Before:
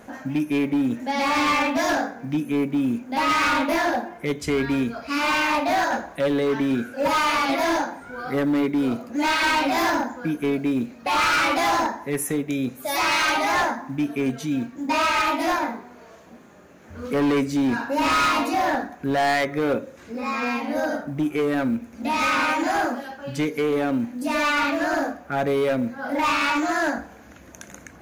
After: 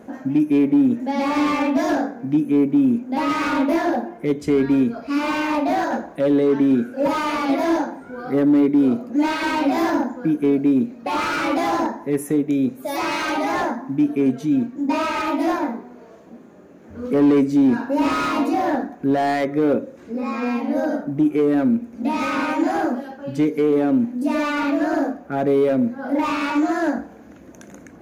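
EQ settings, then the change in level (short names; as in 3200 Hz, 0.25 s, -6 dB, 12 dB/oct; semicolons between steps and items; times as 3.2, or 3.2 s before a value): bell 300 Hz +13 dB 2.7 oct; -6.5 dB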